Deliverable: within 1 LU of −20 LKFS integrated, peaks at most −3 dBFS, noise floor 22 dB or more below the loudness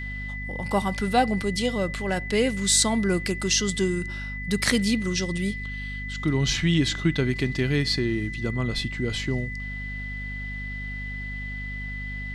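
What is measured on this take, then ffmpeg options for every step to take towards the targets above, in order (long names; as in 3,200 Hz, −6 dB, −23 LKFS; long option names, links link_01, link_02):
mains hum 50 Hz; hum harmonics up to 250 Hz; level of the hum −32 dBFS; interfering tone 2,000 Hz; level of the tone −34 dBFS; integrated loudness −26.0 LKFS; sample peak −4.5 dBFS; target loudness −20.0 LKFS
→ -af "bandreject=frequency=50:width_type=h:width=6,bandreject=frequency=100:width_type=h:width=6,bandreject=frequency=150:width_type=h:width=6,bandreject=frequency=200:width_type=h:width=6,bandreject=frequency=250:width_type=h:width=6"
-af "bandreject=frequency=2000:width=30"
-af "volume=6dB,alimiter=limit=-3dB:level=0:latency=1"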